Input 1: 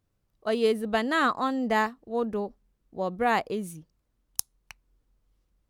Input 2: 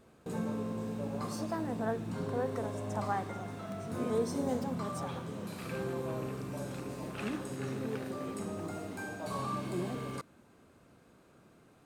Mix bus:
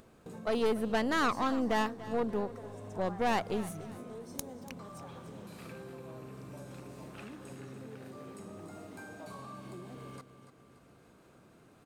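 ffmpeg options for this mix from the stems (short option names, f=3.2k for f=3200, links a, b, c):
-filter_complex "[0:a]aeval=exprs='(tanh(15.8*val(0)+0.55)-tanh(0.55))/15.8':c=same,volume=-0.5dB,asplit=2[a][b];[b]volume=-17dB[c];[1:a]acompressor=threshold=-40dB:ratio=6,volume=-3.5dB,asplit=2[d][e];[e]volume=-11dB[f];[c][f]amix=inputs=2:normalize=0,aecho=0:1:289|578|867|1156|1445:1|0.37|0.137|0.0507|0.0187[g];[a][d][g]amix=inputs=3:normalize=0,acompressor=mode=upward:threshold=-53dB:ratio=2.5"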